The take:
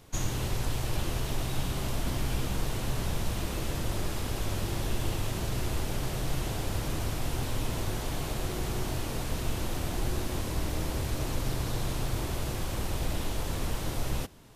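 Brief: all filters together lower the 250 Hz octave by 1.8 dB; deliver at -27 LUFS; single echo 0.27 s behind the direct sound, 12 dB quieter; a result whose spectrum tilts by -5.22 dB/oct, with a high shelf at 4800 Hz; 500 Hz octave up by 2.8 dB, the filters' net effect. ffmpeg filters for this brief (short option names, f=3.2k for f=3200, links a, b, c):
-af "equalizer=f=250:t=o:g=-4.5,equalizer=f=500:t=o:g=5,highshelf=f=4.8k:g=-5.5,aecho=1:1:270:0.251,volume=6.5dB"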